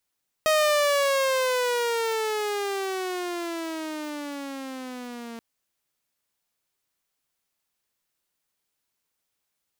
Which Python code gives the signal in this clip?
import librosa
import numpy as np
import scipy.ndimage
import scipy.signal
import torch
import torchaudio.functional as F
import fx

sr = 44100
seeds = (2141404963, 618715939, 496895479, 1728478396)

y = fx.riser_tone(sr, length_s=4.93, level_db=-15.5, wave='saw', hz=629.0, rise_st=-17.5, swell_db=-18)